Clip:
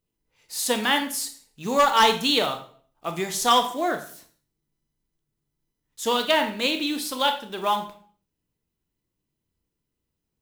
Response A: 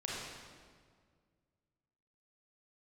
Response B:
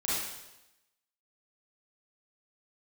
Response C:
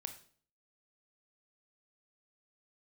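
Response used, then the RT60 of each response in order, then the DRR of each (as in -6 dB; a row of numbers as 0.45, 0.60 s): C; 1.9, 0.95, 0.50 s; -5.5, -9.0, 6.5 dB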